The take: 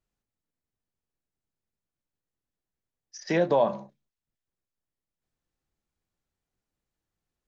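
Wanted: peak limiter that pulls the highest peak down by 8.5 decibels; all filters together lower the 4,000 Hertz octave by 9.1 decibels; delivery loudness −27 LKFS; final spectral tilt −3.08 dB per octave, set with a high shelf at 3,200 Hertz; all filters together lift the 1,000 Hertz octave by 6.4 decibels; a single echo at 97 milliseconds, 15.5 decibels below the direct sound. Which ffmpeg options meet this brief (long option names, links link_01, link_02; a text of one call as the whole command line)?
ffmpeg -i in.wav -af "equalizer=frequency=1000:width_type=o:gain=8.5,highshelf=frequency=3200:gain=-6,equalizer=frequency=4000:width_type=o:gain=-8,alimiter=limit=-16.5dB:level=0:latency=1,aecho=1:1:97:0.168,volume=1.5dB" out.wav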